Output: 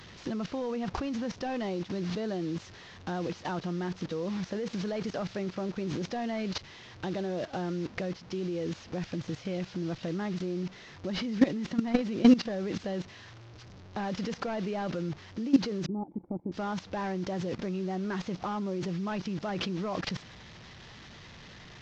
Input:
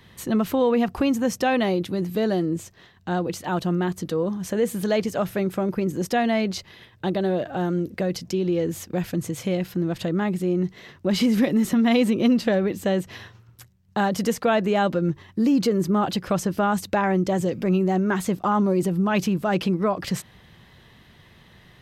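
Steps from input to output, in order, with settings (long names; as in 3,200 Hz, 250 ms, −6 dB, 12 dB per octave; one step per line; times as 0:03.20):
linear delta modulator 32 kbit/s, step −33 dBFS
0:15.86–0:16.52: formant resonators in series u
output level in coarse steps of 17 dB
level +1.5 dB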